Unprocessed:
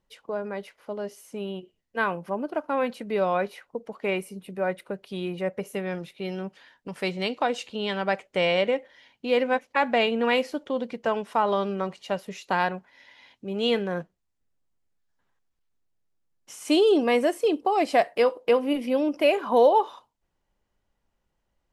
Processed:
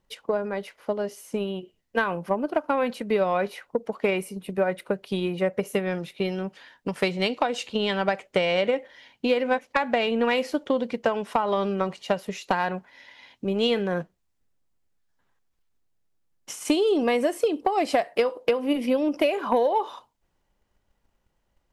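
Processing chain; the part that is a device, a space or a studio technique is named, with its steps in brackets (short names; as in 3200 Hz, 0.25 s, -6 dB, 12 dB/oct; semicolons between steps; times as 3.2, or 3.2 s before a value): drum-bus smash (transient shaper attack +7 dB, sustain +2 dB; compressor 10:1, threshold -20 dBFS, peak gain reduction 11 dB; soft clip -12 dBFS, distortion -23 dB); gain +2.5 dB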